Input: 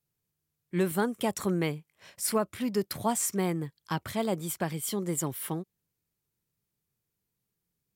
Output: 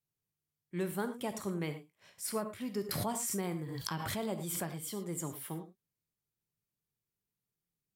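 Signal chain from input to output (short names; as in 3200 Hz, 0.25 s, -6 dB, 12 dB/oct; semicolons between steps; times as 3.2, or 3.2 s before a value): non-linear reverb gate 0.13 s flat, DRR 8 dB; 2.89–4.7 backwards sustainer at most 22 dB/s; gain -8.5 dB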